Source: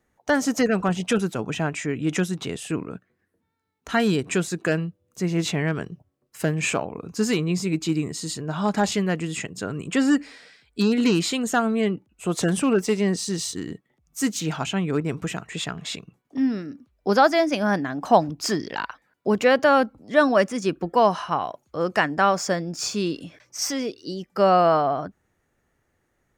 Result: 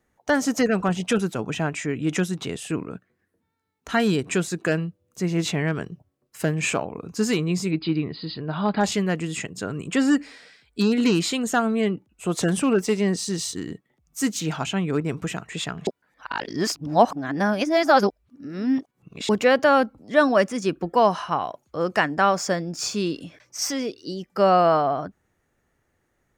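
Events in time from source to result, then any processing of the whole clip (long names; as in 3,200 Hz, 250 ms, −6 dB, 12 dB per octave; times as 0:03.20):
0:07.71–0:08.81: linear-phase brick-wall low-pass 5,000 Hz
0:15.87–0:19.29: reverse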